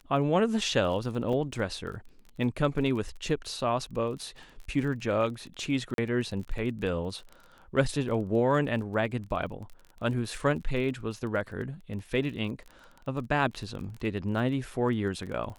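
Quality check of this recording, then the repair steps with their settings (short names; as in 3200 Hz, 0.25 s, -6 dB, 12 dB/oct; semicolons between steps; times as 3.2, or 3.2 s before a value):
crackle 23/s -37 dBFS
1.33 gap 3 ms
5.94–5.98 gap 42 ms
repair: de-click; interpolate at 1.33, 3 ms; interpolate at 5.94, 42 ms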